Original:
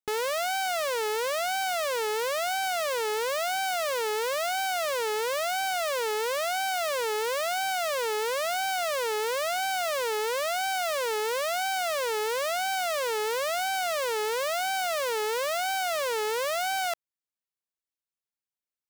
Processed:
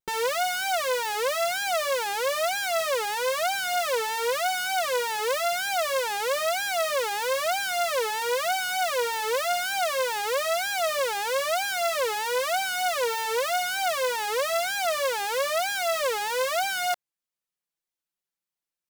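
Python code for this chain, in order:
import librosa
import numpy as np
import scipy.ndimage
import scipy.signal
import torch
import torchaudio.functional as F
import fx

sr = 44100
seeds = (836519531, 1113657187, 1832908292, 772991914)

y = x + 0.88 * np.pad(x, (int(5.8 * sr / 1000.0), 0))[:len(x)]
y = fx.vibrato(y, sr, rate_hz=3.2, depth_cents=97.0)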